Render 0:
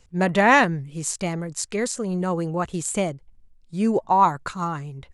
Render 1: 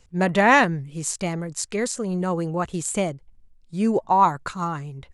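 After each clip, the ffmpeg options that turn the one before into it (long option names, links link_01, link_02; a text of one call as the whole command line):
ffmpeg -i in.wav -af anull out.wav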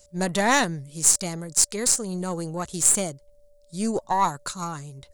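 ffmpeg -i in.wav -af "aeval=exprs='val(0)+0.00224*sin(2*PI*580*n/s)':channel_layout=same,aexciter=amount=6.2:drive=2.8:freq=3800,aeval=exprs='1.33*(cos(1*acos(clip(val(0)/1.33,-1,1)))-cos(1*PI/2))+0.0944*(cos(6*acos(clip(val(0)/1.33,-1,1)))-cos(6*PI/2))+0.119*(cos(8*acos(clip(val(0)/1.33,-1,1)))-cos(8*PI/2))':channel_layout=same,volume=-5dB" out.wav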